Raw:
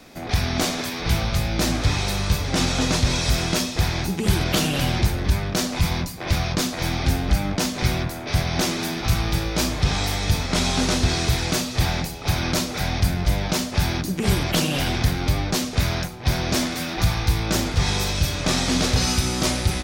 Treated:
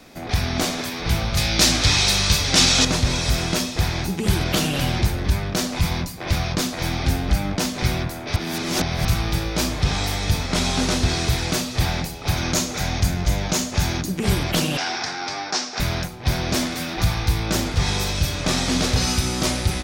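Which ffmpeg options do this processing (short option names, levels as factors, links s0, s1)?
-filter_complex "[0:a]asettb=1/sr,asplit=3[s0][s1][s2];[s0]atrim=end=1.374[s3];[s1]atrim=start=1.37:end=2.85,asetpts=PTS-STARTPTS,afade=t=in:d=0.004:c=qsin,afade=t=out:st=1.476:d=0.004:c=qsin,equalizer=f=5100:w=0.39:g=11.5[s4];[s2]atrim=start=2.846[s5];[s3][s4]acrossfade=d=0.004:c1=hsin:c2=qsin[s6];[s6][s5]acrossfade=d=0.004:c1=qsin:c2=hsin,asettb=1/sr,asplit=3[s7][s8][s9];[s7]atrim=end=12.374[s10];[s8]atrim=start=12.37:end=14.06,asetpts=PTS-STARTPTS,afade=t=in:d=0.004:c=qsin,afade=t=out:st=1.686:d=0.004:c=qsin,equalizer=f=6700:w=4.1:g=8.5[s11];[s9]atrim=start=14.056[s12];[s10][s11]acrossfade=d=0.004:c1=hsin:c2=qsin[s13];[s13][s12]acrossfade=d=0.004:c1=qsin:c2=hsin,asettb=1/sr,asplit=3[s14][s15][s16];[s14]atrim=end=14.774[s17];[s15]atrim=start=14.77:end=15.8,asetpts=PTS-STARTPTS,afade=t=in:d=0.004:c=qsin,afade=t=out:st=1.026:d=0.004:c=qsin,highpass=440,equalizer=f=540:t=q:w=4:g=-7,equalizer=f=800:t=q:w=4:g=6,equalizer=f=1500:t=q:w=4:g=5,equalizer=f=3100:t=q:w=4:g=-4,equalizer=f=5400:t=q:w=4:g=8,lowpass=f=6700:w=0.5412,lowpass=f=6700:w=1.3066[s18];[s16]atrim=start=15.796[s19];[s17][s18]acrossfade=d=0.004:c1=hsin:c2=qsin[s20];[s20][s19]acrossfade=d=0.004:c1=qsin:c2=hsin,asplit=3[s21][s22][s23];[s21]atrim=end=8.362[s24];[s22]atrim=start=8.358:end=9.052,asetpts=PTS-STARTPTS,areverse[s25];[s23]atrim=start=9.048[s26];[s24][s25]acrossfade=d=0.004:c1=hsin:c2=hsin[s27];[s27][s26]acrossfade=d=0.004:c1=hsin:c2=hsin"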